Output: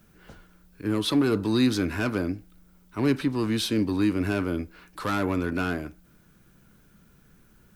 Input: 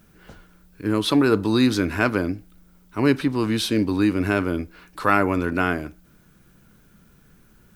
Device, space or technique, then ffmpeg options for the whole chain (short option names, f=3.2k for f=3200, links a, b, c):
one-band saturation: -filter_complex "[0:a]acrossover=split=340|3100[a][b][c];[b]asoftclip=type=tanh:threshold=-22.5dB[d];[a][d][c]amix=inputs=3:normalize=0,volume=-3dB"